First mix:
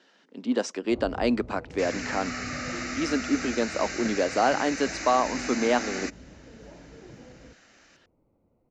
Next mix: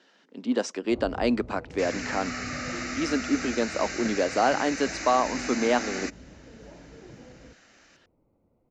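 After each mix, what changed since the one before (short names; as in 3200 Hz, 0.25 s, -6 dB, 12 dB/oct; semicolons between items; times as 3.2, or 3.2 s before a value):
none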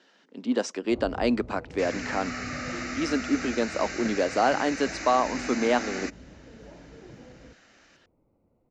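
second sound: add high shelf 4800 Hz -5 dB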